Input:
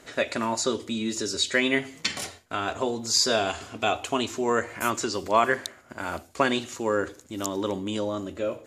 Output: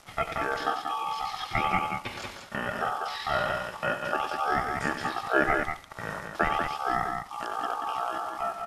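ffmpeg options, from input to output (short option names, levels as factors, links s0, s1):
-filter_complex "[0:a]acrossover=split=2600[s0][s1];[s1]acompressor=threshold=0.0178:ratio=4:attack=1:release=60[s2];[s0][s2]amix=inputs=2:normalize=0,acrusher=bits=7:mix=0:aa=0.000001,aeval=exprs='val(0)*sin(2*PI*1700*n/s)':c=same,aecho=1:1:96.21|189.5:0.316|0.562,asetrate=26222,aresample=44100,atempo=1.68179"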